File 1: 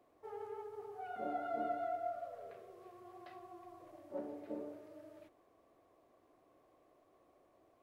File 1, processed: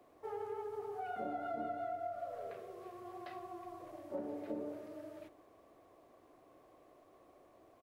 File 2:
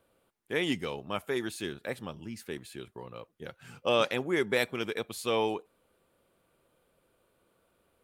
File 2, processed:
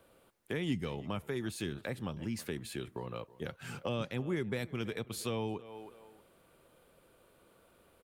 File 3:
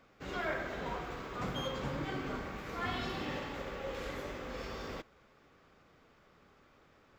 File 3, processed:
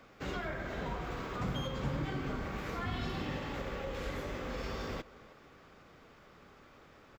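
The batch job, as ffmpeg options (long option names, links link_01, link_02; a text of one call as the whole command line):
ffmpeg -i in.wav -filter_complex "[0:a]asplit=2[link_01][link_02];[link_02]adelay=321,lowpass=frequency=2500:poles=1,volume=-22dB,asplit=2[link_03][link_04];[link_04]adelay=321,lowpass=frequency=2500:poles=1,volume=0.22[link_05];[link_03][link_05]amix=inputs=2:normalize=0[link_06];[link_01][link_06]amix=inputs=2:normalize=0,acrossover=split=200[link_07][link_08];[link_08]acompressor=threshold=-44dB:ratio=6[link_09];[link_07][link_09]amix=inputs=2:normalize=0,volume=6dB" out.wav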